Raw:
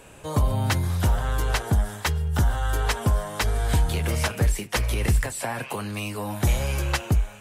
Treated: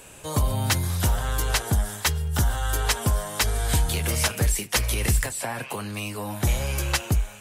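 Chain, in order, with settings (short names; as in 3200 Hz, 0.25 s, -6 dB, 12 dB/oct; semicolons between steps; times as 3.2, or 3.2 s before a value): high shelf 3200 Hz +10 dB, from 5.29 s +3.5 dB, from 6.78 s +8.5 dB; gain -1.5 dB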